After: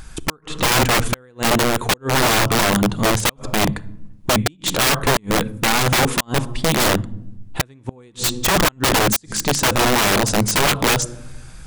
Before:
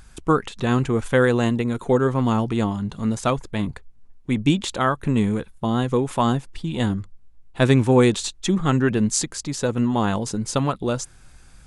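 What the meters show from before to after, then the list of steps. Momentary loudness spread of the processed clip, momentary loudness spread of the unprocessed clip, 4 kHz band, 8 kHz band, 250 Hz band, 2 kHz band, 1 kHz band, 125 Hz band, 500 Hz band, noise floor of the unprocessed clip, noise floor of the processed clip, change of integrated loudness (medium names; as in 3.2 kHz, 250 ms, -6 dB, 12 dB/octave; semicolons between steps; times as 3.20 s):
11 LU, 8 LU, +12.0 dB, +10.0 dB, -2.0 dB, +10.0 dB, +6.0 dB, -0.5 dB, +1.0 dB, -49 dBFS, -48 dBFS, +4.0 dB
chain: simulated room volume 2600 m³, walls furnished, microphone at 0.55 m; inverted gate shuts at -8 dBFS, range -39 dB; integer overflow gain 19.5 dB; trim +9 dB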